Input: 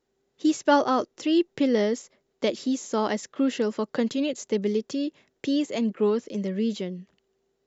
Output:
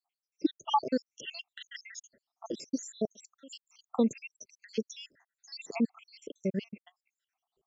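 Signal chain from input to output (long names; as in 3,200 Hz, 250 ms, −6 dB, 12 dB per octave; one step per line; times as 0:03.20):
time-frequency cells dropped at random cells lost 82%
0:03.05–0:03.88: first difference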